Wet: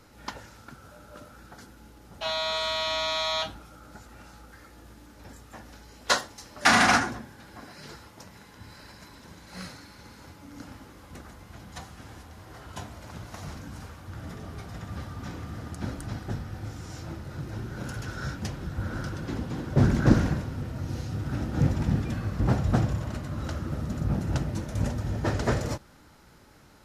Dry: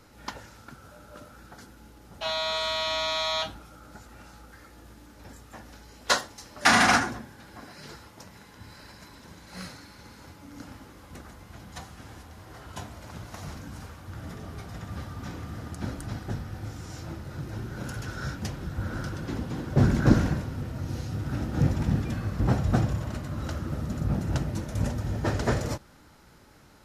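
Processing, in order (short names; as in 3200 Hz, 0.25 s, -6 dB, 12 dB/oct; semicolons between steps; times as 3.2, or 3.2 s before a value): Doppler distortion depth 0.21 ms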